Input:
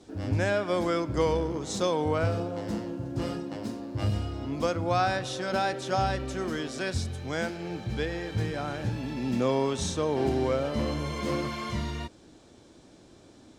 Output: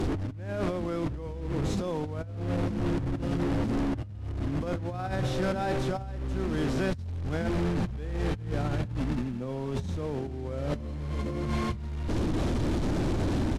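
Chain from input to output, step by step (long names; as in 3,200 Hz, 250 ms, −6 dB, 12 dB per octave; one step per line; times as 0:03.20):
linear delta modulator 64 kbit/s, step −28 dBFS
RIAA equalisation playback
on a send: single-tap delay 80 ms −17.5 dB
on the sum: compressor whose output falls as the input rises −27 dBFS, ratio −1
level −4 dB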